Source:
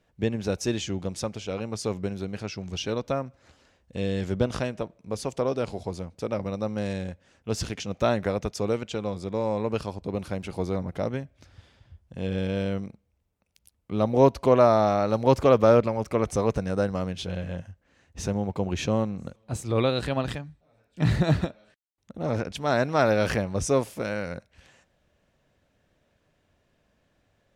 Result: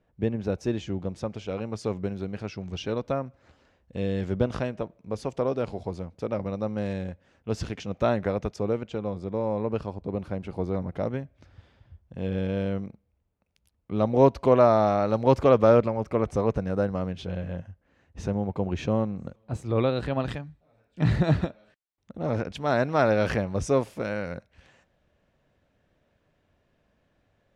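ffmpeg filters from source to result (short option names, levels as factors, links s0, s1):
-af "asetnsamples=n=441:p=0,asendcmd='1.3 lowpass f 2200;8.56 lowpass f 1200;10.74 lowpass f 2000;13.96 lowpass f 3200;15.87 lowpass f 1700;20.2 lowpass f 3100',lowpass=f=1200:p=1"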